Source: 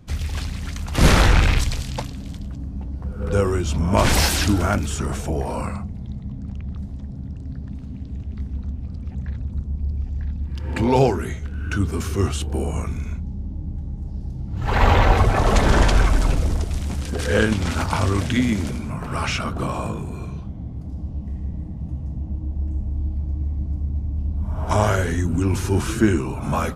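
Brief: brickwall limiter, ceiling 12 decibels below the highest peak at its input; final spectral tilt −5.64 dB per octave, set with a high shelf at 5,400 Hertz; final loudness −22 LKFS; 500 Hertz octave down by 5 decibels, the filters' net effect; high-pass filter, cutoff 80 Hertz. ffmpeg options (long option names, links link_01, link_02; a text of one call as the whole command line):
ffmpeg -i in.wav -af "highpass=80,equalizer=frequency=500:width_type=o:gain=-6.5,highshelf=frequency=5400:gain=-6.5,volume=7dB,alimiter=limit=-9dB:level=0:latency=1" out.wav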